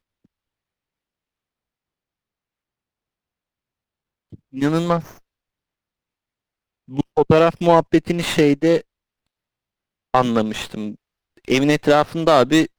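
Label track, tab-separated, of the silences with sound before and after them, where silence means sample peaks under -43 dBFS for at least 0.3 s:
5.180000	6.880000	silence
8.810000	10.140000	silence
10.950000	11.370000	silence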